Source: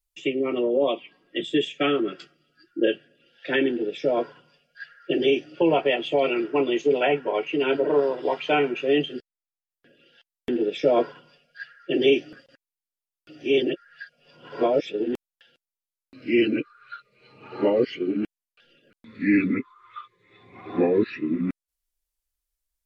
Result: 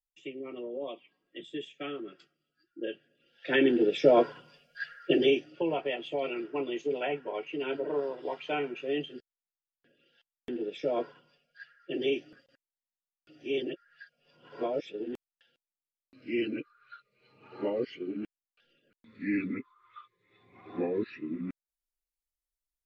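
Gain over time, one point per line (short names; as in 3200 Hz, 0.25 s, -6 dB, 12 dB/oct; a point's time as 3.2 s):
2.79 s -15.5 dB
3.47 s -4.5 dB
3.8 s +2.5 dB
4.96 s +2.5 dB
5.68 s -10.5 dB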